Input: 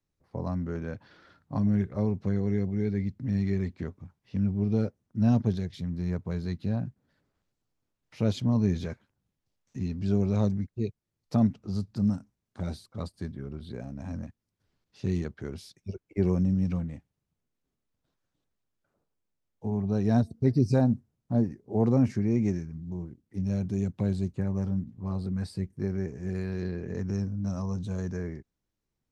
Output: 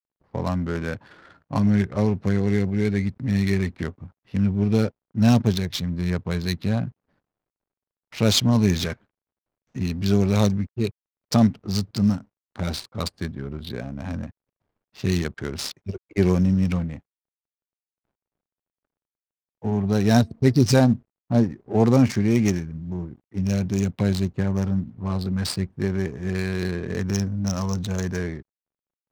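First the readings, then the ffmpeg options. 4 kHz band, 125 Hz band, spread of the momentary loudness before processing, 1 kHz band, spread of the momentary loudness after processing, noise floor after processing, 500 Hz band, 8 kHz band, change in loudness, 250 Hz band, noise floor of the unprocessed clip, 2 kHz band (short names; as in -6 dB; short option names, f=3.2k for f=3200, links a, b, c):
+19.0 dB, +5.5 dB, 14 LU, +9.5 dB, 14 LU, under -85 dBFS, +7.0 dB, n/a, +6.0 dB, +6.0 dB, -84 dBFS, +14.0 dB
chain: -af "crystalizer=i=10:c=0,acrusher=bits=9:mix=0:aa=0.000001,adynamicsmooth=sensitivity=8:basefreq=900,volume=5.5dB"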